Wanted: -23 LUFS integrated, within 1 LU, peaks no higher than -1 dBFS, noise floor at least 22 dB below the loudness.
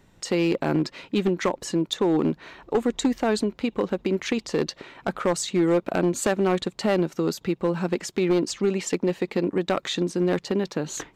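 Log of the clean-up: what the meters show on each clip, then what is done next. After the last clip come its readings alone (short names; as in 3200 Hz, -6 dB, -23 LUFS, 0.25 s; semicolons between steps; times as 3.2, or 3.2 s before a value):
clipped 1.5%; flat tops at -15.0 dBFS; loudness -25.0 LUFS; peak -15.0 dBFS; loudness target -23.0 LUFS
-> clip repair -15 dBFS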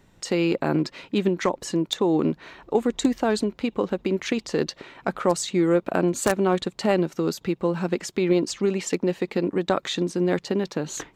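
clipped 0.0%; loudness -24.5 LUFS; peak -6.0 dBFS; loudness target -23.0 LUFS
-> gain +1.5 dB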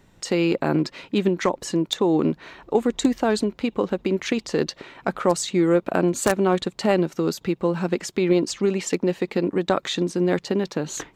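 loudness -23.0 LUFS; peak -4.5 dBFS; noise floor -56 dBFS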